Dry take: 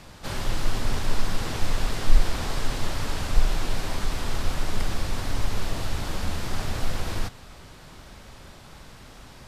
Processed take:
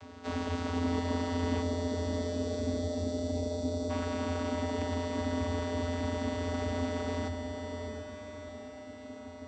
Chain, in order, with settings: spectral selection erased 1.62–3.89 s, 730–3800 Hz; in parallel at -12 dB: sample-and-hold 17×; on the sum: vocoder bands 16, square 86.5 Hz; echo that smears into a reverb 675 ms, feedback 51%, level -5 dB

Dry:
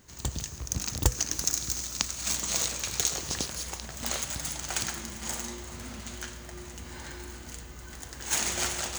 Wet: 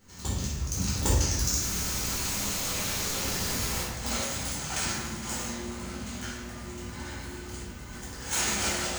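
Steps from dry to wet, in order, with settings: 1.61–3.83 s: one-bit comparator; simulated room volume 390 m³, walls mixed, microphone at 4.2 m; trim -8 dB

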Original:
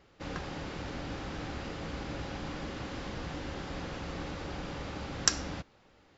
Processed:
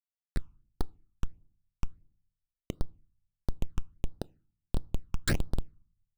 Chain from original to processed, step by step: chunks repeated in reverse 585 ms, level -1.5 dB; high-pass 330 Hz 12 dB/octave; Schmitt trigger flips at -29.5 dBFS; on a send at -22 dB: reverberation RT60 0.50 s, pre-delay 5 ms; on the sum: phase shifter stages 8, 1.5 Hz, lowest notch 540–2400 Hz; trim +15.5 dB

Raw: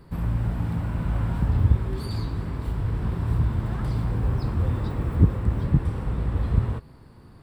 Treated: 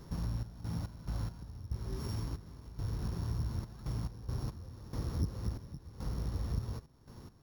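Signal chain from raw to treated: sorted samples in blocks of 8 samples; compression 2.5:1, threshold -36 dBFS, peak gain reduction 17 dB; trance gate "xx.x.x..xxx..xx" 70 bpm -12 dB; trim -1.5 dB

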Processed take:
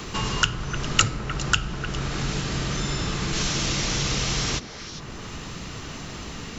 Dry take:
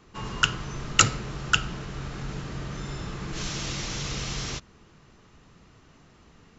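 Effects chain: repeats whose band climbs or falls 101 ms, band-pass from 250 Hz, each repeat 1.4 oct, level -8 dB; three bands compressed up and down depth 70%; trim +6 dB

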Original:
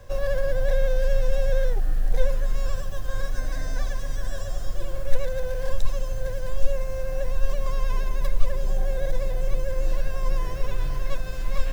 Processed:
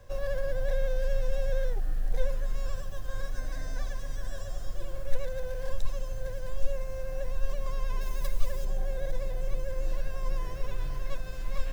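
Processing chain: 8.01–8.65 s: treble shelf 4.2 kHz +9.5 dB; trim -6.5 dB

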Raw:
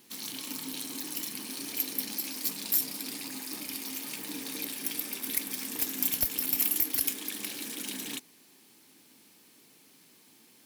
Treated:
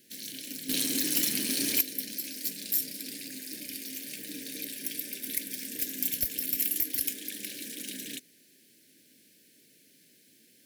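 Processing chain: elliptic band-stop 610–1600 Hz, stop band 50 dB; 0.69–1.81 s: waveshaping leveller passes 3; trim -1.5 dB

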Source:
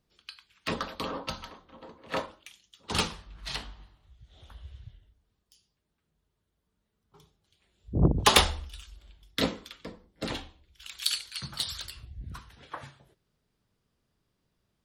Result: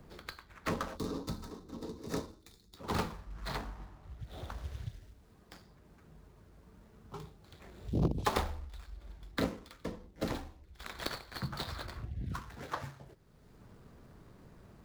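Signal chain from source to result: median filter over 15 samples; time-frequency box 0.97–2.77 s, 480–3500 Hz -12 dB; three bands compressed up and down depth 70%; trim +1 dB

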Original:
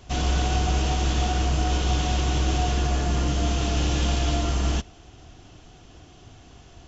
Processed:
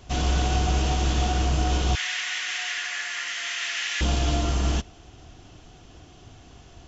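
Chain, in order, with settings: 1.95–4.01 s: resonant high-pass 1.9 kHz, resonance Q 5.5

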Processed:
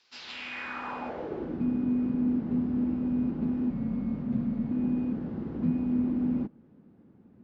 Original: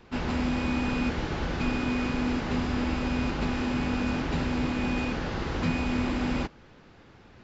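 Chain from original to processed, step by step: 3.70–4.71 s: frequency shift -290 Hz; band-pass sweep 4.9 kHz -> 220 Hz, 0.15–1.65 s; trim +4 dB

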